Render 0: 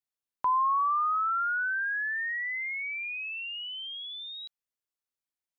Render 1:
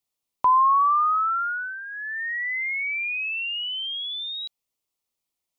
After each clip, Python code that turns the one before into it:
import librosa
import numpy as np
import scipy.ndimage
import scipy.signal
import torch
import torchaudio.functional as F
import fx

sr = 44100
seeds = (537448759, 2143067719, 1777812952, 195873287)

y = fx.peak_eq(x, sr, hz=1600.0, db=-15.0, octaves=0.32)
y = y * librosa.db_to_amplitude(9.0)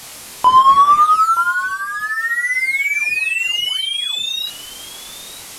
y = fx.delta_mod(x, sr, bps=64000, step_db=-36.5)
y = fx.doubler(y, sr, ms=24.0, db=-3.5)
y = y + 10.0 ** (-17.0 / 20.0) * np.pad(y, (int(924 * sr / 1000.0), 0))[:len(y)]
y = y * librosa.db_to_amplitude(7.5)